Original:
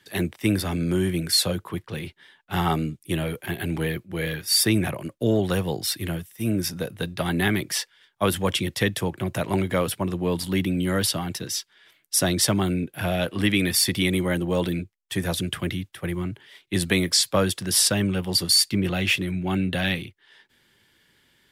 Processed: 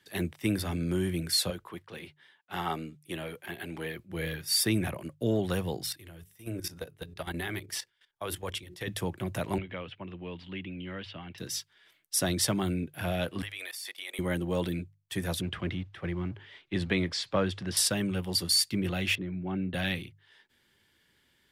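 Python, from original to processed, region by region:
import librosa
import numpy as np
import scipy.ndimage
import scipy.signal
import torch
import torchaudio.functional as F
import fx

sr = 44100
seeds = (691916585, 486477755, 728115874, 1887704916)

y = fx.chain(x, sr, fx.highpass(hz=400.0, slope=6),
    fx.high_shelf(hz=5000.0, db=-5.5), at=(1.5, 3.99))
y = fx.chain(y, sr, fx.peak_eq(hz=210.0, db=-12.0, octaves=0.44),
    fx.hum_notches(base_hz=60, count=7),
    fx.level_steps(step_db=14), at=(5.86, 8.88))
y = fx.chain(y, sr, fx.ladder_lowpass(hz=3200.0, resonance_pct=55),
    fx.band_squash(depth_pct=40), at=(9.58, 11.38))
y = fx.chain(y, sr, fx.highpass(hz=600.0, slope=24),
    fx.level_steps(step_db=17), at=(13.42, 14.19))
y = fx.chain(y, sr, fx.law_mismatch(coded='mu'),
    fx.lowpass(hz=3400.0, slope=12), at=(15.41, 17.77))
y = fx.chain(y, sr, fx.highpass(hz=110.0, slope=12),
    fx.spacing_loss(db_at_10k=38), at=(19.15, 19.74))
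y = fx.peak_eq(y, sr, hz=71.0, db=4.5, octaves=0.67)
y = fx.hum_notches(y, sr, base_hz=50, count=3)
y = F.gain(torch.from_numpy(y), -6.5).numpy()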